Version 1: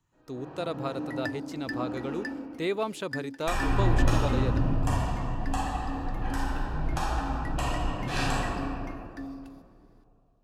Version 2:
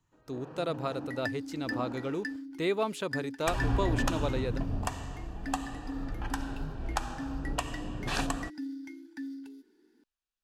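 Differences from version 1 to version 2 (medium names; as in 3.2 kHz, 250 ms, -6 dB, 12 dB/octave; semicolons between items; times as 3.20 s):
first sound +9.0 dB; reverb: off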